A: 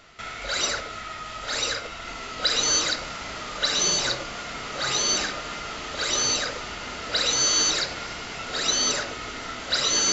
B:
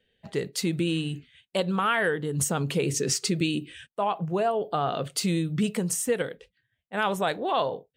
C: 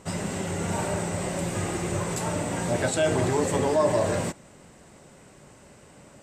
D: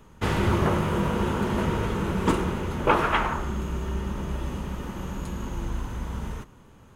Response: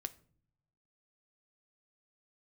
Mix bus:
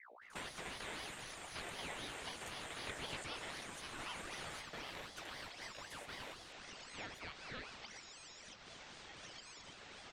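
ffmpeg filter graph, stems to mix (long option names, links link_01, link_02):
-filter_complex "[0:a]acompressor=threshold=-32dB:ratio=6,adelay=700,volume=-15.5dB[link_01];[1:a]highpass=frequency=310:width=0.5412,highpass=frequency=310:width=1.3066,highshelf=frequency=8200:gain=-9.5,aeval=exprs='val(0)+0.0112*(sin(2*PI*60*n/s)+sin(2*PI*2*60*n/s)/2+sin(2*PI*3*60*n/s)/3+sin(2*PI*4*60*n/s)/4+sin(2*PI*5*60*n/s)/5)':channel_layout=same,volume=-15.5dB,asplit=2[link_02][link_03];[2:a]crystalizer=i=2.5:c=0,adelay=300,volume=-14dB[link_04];[3:a]acompressor=threshold=-28dB:ratio=6,volume=-2.5dB[link_05];[link_03]apad=whole_len=306818[link_06];[link_05][link_06]sidechaingate=range=-33dB:threshold=-49dB:ratio=16:detection=peak[link_07];[link_01][link_02][link_04][link_07]amix=inputs=4:normalize=0,adynamicequalizer=threshold=0.00178:dfrequency=2900:dqfactor=1.5:tfrequency=2900:tqfactor=1.5:attack=5:release=100:ratio=0.375:range=2.5:mode=boostabove:tftype=bell,acrossover=split=1000|3000[link_08][link_09][link_10];[link_08]acompressor=threshold=-52dB:ratio=4[link_11];[link_09]acompressor=threshold=-42dB:ratio=4[link_12];[link_10]acompressor=threshold=-55dB:ratio=4[link_13];[link_11][link_12][link_13]amix=inputs=3:normalize=0,aeval=exprs='val(0)*sin(2*PI*1300*n/s+1300*0.6/3.9*sin(2*PI*3.9*n/s))':channel_layout=same"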